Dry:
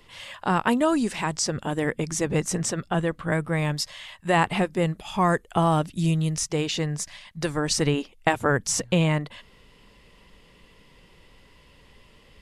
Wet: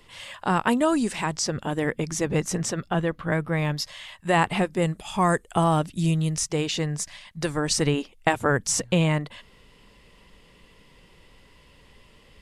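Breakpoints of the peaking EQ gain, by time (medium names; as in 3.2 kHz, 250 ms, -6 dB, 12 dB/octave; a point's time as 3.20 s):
peaking EQ 8.4 kHz 0.46 oct
+3.5 dB
from 1.26 s -3.5 dB
from 2.93 s -9.5 dB
from 3.85 s +1.5 dB
from 4.82 s +9 dB
from 5.64 s +2 dB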